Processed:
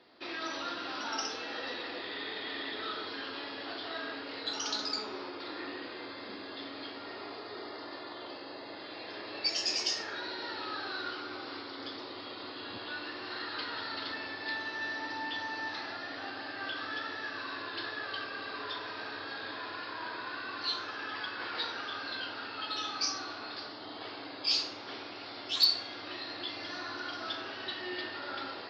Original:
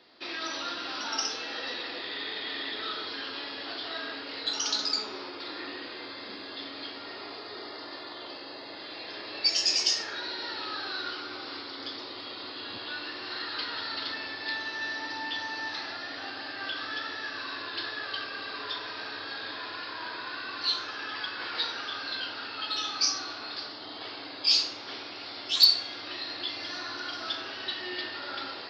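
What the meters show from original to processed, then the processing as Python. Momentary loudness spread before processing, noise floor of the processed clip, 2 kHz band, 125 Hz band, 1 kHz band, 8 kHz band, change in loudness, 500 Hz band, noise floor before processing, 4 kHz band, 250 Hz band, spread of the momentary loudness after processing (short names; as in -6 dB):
13 LU, -45 dBFS, -2.5 dB, 0.0 dB, -1.0 dB, -7.0 dB, -5.0 dB, -0.5 dB, -42 dBFS, -6.0 dB, 0.0 dB, 10 LU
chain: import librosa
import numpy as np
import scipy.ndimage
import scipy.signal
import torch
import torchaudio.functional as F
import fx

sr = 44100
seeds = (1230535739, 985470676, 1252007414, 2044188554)

y = fx.high_shelf(x, sr, hz=2700.0, db=-8.5)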